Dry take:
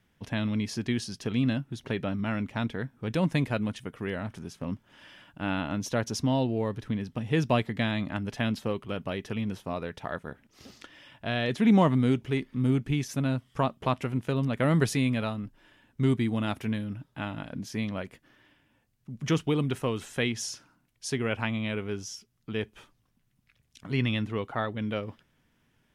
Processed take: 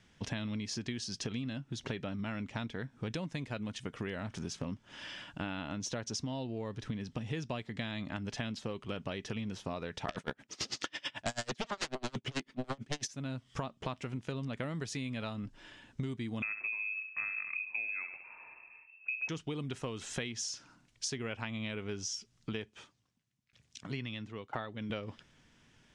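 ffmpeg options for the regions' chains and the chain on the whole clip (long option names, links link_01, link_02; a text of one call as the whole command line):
ffmpeg -i in.wav -filter_complex "[0:a]asettb=1/sr,asplit=3[link_01][link_02][link_03];[link_01]atrim=end=10.084[link_04];[link_02]atrim=start=10.08:end=13.08,asetpts=PTS-STARTPTS,afade=type=in:duration=0.004:curve=qsin,afade=type=out:start_time=2.996:duration=0.004:curve=qsin,highpass=frequency=190:poles=1,aeval=exprs='0.282*sin(PI/2*7.94*val(0)/0.282)':channel_layout=same,aeval=exprs='val(0)*pow(10,-33*(0.5-0.5*cos(2*PI*9.1*n/s))/20)':channel_layout=same[link_05];[link_03]atrim=start=13.076[link_06];[link_04][link_05]acrossfade=duration=0.004:curve1=hsin:curve2=qsin[link_07];[link_07][link_06]acrossfade=duration=0.004:curve1=qsin:curve2=hsin,asettb=1/sr,asplit=3[link_08][link_09][link_10];[link_08]atrim=end=16.424[link_11];[link_09]atrim=start=16.42:end=19.29,asetpts=PTS-STARTPTS,afade=type=in:duration=0.004:curve=qsin,afade=type=out:start_time=2.866:duration=0.004:curve=qsin,lowshelf=frequency=230:gain=11,aecho=1:1:67|134|201|268:0.299|0.0985|0.0325|0.0107,atrim=end_sample=126567,lowpass=frequency=2300:width_type=q:width=0.5098,lowpass=frequency=2300:width_type=q:width=0.6013,lowpass=frequency=2300:width_type=q:width=0.9,lowpass=frequency=2300:width_type=q:width=2.563,afreqshift=-2700[link_12];[link_10]atrim=start=19.286[link_13];[link_11][link_12]acrossfade=duration=0.004:curve1=hsin:curve2=qsin[link_14];[link_14][link_13]acrossfade=duration=0.004:curve1=qsin:curve2=hsin,asettb=1/sr,asplit=3[link_15][link_16][link_17];[link_15]atrim=end=22.534[link_18];[link_16]atrim=start=22.53:end=24.9,asetpts=PTS-STARTPTS,afade=type=in:duration=0.004:curve=qsin,afade=type=out:start_time=2.366:duration=0.004:curve=qsin,highpass=76,aeval=exprs='val(0)*pow(10,-19*if(lt(mod(1*n/s,1),2*abs(1)/1000),1-mod(1*n/s,1)/(2*abs(1)/1000),(mod(1*n/s,1)-2*abs(1)/1000)/(1-2*abs(1)/1000))/20)':channel_layout=same[link_19];[link_17]atrim=start=24.896[link_20];[link_18][link_19]acrossfade=duration=0.004:curve1=hsin:curve2=qsin[link_21];[link_21][link_20]acrossfade=duration=0.004:curve1=qsin:curve2=hsin,lowpass=frequency=7400:width=0.5412,lowpass=frequency=7400:width=1.3066,highshelf=frequency=3800:gain=10,acompressor=threshold=-38dB:ratio=16,volume=3.5dB" out.wav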